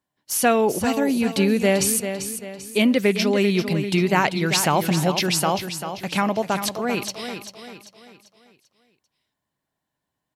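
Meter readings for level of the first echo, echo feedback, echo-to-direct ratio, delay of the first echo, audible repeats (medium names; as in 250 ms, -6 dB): -9.0 dB, 41%, -8.0 dB, 392 ms, 4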